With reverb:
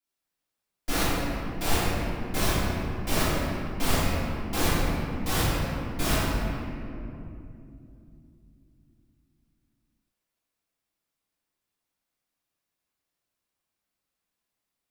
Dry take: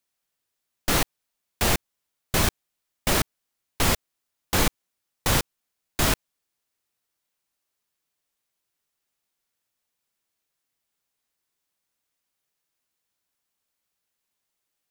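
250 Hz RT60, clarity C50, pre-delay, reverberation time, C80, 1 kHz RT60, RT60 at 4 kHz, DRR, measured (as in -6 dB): 4.4 s, -4.0 dB, 3 ms, 2.8 s, -2.0 dB, 2.4 s, 1.4 s, -14.5 dB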